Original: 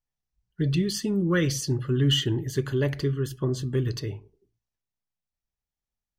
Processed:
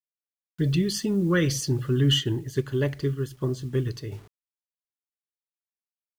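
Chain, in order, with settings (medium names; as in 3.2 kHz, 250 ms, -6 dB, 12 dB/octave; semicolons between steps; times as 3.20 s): bit crusher 9-bit; 2.18–4.12 s: upward expansion 1.5:1, over -34 dBFS; trim +1 dB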